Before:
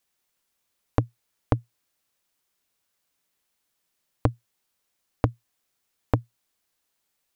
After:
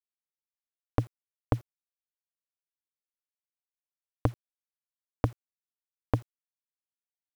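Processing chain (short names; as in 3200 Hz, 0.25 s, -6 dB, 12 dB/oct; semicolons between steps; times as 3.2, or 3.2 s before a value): bit-crush 8-bit; gain -4 dB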